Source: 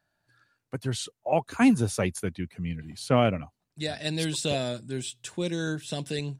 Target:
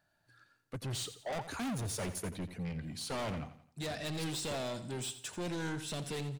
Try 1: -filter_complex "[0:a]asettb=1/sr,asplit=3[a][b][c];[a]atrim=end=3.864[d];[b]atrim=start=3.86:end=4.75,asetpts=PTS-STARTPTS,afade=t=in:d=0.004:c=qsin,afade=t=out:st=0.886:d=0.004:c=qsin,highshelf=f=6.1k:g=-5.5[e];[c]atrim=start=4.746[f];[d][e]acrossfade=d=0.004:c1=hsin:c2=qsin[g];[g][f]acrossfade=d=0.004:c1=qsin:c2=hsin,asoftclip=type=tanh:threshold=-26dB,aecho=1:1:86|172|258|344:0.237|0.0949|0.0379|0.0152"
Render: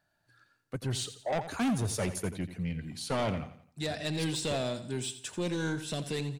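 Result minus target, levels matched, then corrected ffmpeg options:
soft clip: distortion -4 dB
-filter_complex "[0:a]asettb=1/sr,asplit=3[a][b][c];[a]atrim=end=3.864[d];[b]atrim=start=3.86:end=4.75,asetpts=PTS-STARTPTS,afade=t=in:d=0.004:c=qsin,afade=t=out:st=0.886:d=0.004:c=qsin,highshelf=f=6.1k:g=-5.5[e];[c]atrim=start=4.746[f];[d][e]acrossfade=d=0.004:c1=hsin:c2=qsin[g];[g][f]acrossfade=d=0.004:c1=qsin:c2=hsin,asoftclip=type=tanh:threshold=-35dB,aecho=1:1:86|172|258|344:0.237|0.0949|0.0379|0.0152"

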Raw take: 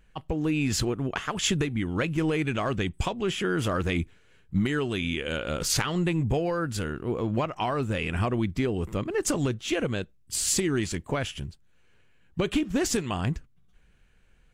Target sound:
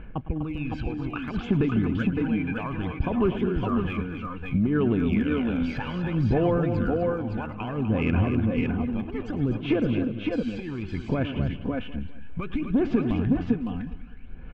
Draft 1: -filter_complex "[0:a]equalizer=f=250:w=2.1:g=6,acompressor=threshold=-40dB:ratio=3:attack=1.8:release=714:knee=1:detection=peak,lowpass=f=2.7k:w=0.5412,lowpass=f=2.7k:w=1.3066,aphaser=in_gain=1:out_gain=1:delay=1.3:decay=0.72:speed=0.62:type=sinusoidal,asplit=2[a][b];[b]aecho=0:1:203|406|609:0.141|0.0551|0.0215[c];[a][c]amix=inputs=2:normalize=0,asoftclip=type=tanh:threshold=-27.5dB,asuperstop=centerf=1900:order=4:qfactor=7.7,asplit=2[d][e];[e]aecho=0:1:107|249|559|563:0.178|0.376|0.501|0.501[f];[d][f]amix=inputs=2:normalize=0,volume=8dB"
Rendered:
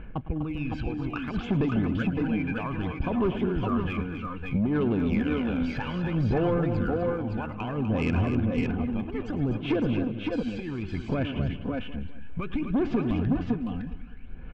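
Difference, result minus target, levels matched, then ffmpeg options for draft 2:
soft clip: distortion +12 dB
-filter_complex "[0:a]equalizer=f=250:w=2.1:g=6,acompressor=threshold=-40dB:ratio=3:attack=1.8:release=714:knee=1:detection=peak,lowpass=f=2.7k:w=0.5412,lowpass=f=2.7k:w=1.3066,aphaser=in_gain=1:out_gain=1:delay=1.3:decay=0.72:speed=0.62:type=sinusoidal,asplit=2[a][b];[b]aecho=0:1:203|406|609:0.141|0.0551|0.0215[c];[a][c]amix=inputs=2:normalize=0,asoftclip=type=tanh:threshold=-19dB,asuperstop=centerf=1900:order=4:qfactor=7.7,asplit=2[d][e];[e]aecho=0:1:107|249|559|563:0.178|0.376|0.501|0.501[f];[d][f]amix=inputs=2:normalize=0,volume=8dB"

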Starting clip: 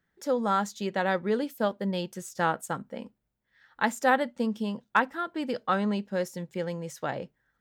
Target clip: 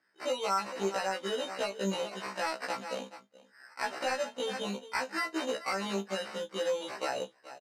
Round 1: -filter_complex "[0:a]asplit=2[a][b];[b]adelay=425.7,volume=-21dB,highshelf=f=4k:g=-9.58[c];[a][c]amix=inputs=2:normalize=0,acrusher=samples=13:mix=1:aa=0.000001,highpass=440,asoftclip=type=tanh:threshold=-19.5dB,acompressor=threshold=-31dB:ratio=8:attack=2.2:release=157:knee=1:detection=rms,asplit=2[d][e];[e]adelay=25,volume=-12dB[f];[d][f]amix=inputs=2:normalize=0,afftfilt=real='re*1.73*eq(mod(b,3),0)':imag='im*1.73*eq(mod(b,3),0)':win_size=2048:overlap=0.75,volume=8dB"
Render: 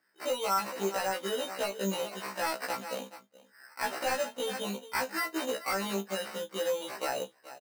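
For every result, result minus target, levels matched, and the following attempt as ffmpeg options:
soft clip: distortion +7 dB; 8000 Hz band +3.0 dB
-filter_complex "[0:a]asplit=2[a][b];[b]adelay=425.7,volume=-21dB,highshelf=f=4k:g=-9.58[c];[a][c]amix=inputs=2:normalize=0,acrusher=samples=13:mix=1:aa=0.000001,highpass=440,asoftclip=type=tanh:threshold=-13dB,acompressor=threshold=-31dB:ratio=8:attack=2.2:release=157:knee=1:detection=rms,asplit=2[d][e];[e]adelay=25,volume=-12dB[f];[d][f]amix=inputs=2:normalize=0,afftfilt=real='re*1.73*eq(mod(b,3),0)':imag='im*1.73*eq(mod(b,3),0)':win_size=2048:overlap=0.75,volume=8dB"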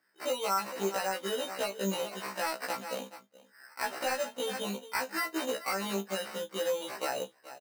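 8000 Hz band +3.5 dB
-filter_complex "[0:a]asplit=2[a][b];[b]adelay=425.7,volume=-21dB,highshelf=f=4k:g=-9.58[c];[a][c]amix=inputs=2:normalize=0,acrusher=samples=13:mix=1:aa=0.000001,highpass=440,asoftclip=type=tanh:threshold=-13dB,acompressor=threshold=-31dB:ratio=8:attack=2.2:release=157:knee=1:detection=rms,lowpass=6.8k,asplit=2[d][e];[e]adelay=25,volume=-12dB[f];[d][f]amix=inputs=2:normalize=0,afftfilt=real='re*1.73*eq(mod(b,3),0)':imag='im*1.73*eq(mod(b,3),0)':win_size=2048:overlap=0.75,volume=8dB"

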